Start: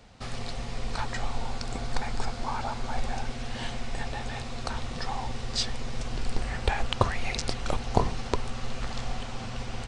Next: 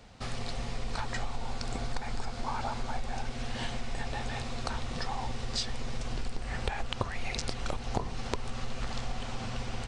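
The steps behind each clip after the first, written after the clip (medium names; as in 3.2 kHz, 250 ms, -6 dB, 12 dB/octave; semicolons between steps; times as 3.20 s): compression 5:1, threshold -28 dBFS, peak gain reduction 11.5 dB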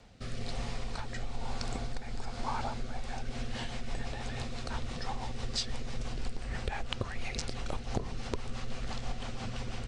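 rotary cabinet horn 1.1 Hz, later 6 Hz, at 2.72 s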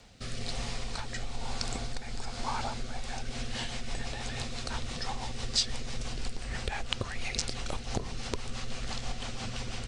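treble shelf 2.5 kHz +8.5 dB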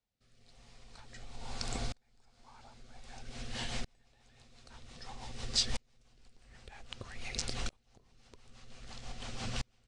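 sawtooth tremolo in dB swelling 0.52 Hz, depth 37 dB; trim +1 dB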